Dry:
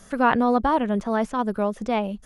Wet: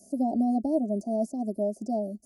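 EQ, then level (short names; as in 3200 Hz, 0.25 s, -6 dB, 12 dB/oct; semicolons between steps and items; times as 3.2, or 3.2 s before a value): HPF 160 Hz 12 dB/oct; Chebyshev band-stop 660–4600 Hz, order 4; fixed phaser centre 720 Hz, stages 8; 0.0 dB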